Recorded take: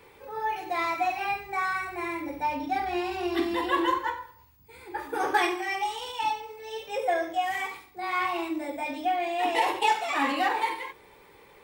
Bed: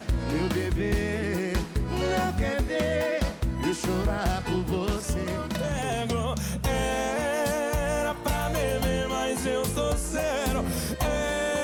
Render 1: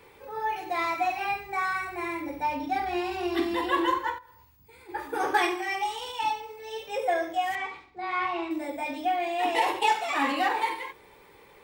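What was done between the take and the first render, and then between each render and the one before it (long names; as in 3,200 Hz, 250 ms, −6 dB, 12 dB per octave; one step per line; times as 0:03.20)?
0:04.18–0:04.89: downward compressor 4 to 1, threshold −49 dBFS
0:07.55–0:08.51: high-frequency loss of the air 140 metres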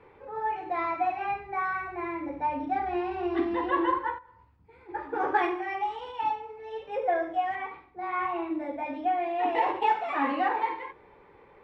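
low-pass filter 1,700 Hz 12 dB per octave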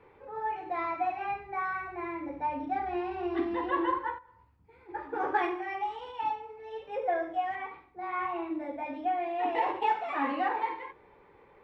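level −3 dB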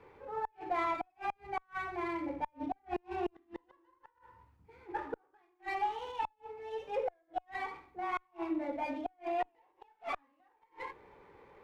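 gate with flip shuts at −24 dBFS, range −40 dB
windowed peak hold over 3 samples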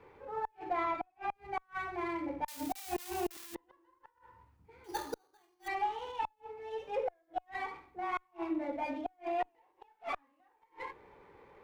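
0:00.73–0:01.35: high-shelf EQ 5,000 Hz −10.5 dB
0:02.48–0:03.55: spike at every zero crossing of −31.5 dBFS
0:04.84–0:05.68: sample-rate reduction 5,300 Hz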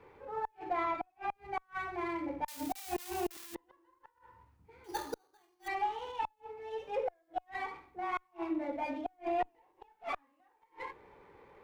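0:09.12–0:10.05: low-shelf EQ 290 Hz +8.5 dB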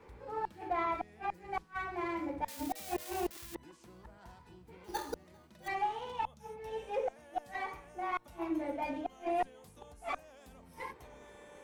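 mix in bed −29.5 dB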